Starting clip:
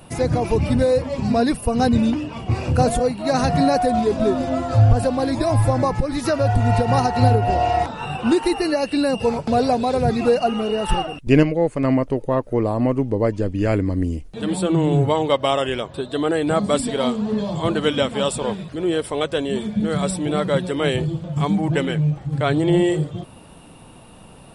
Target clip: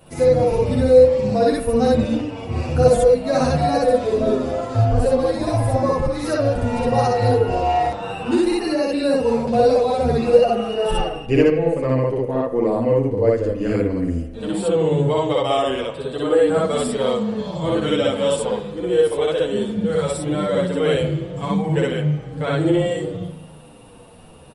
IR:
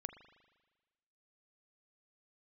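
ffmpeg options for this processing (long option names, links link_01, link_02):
-filter_complex "[0:a]equalizer=frequency=490:width_type=o:width=0.22:gain=10,asplit=2[link_01][link_02];[1:a]atrim=start_sample=2205,adelay=61[link_03];[link_02][link_03]afir=irnorm=-1:irlink=0,volume=5.5dB[link_04];[link_01][link_04]amix=inputs=2:normalize=0,asplit=2[link_05][link_06];[link_06]adelay=8.7,afreqshift=-1.2[link_07];[link_05][link_07]amix=inputs=2:normalize=1,volume=-2.5dB"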